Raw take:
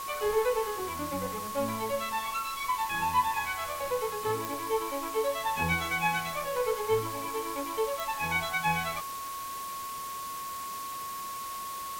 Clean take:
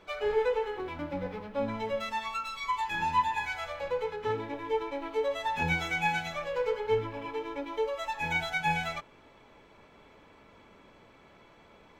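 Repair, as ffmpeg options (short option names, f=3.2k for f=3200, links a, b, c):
-af "adeclick=t=4,bandreject=f=1.1k:w=30,afwtdn=0.0071"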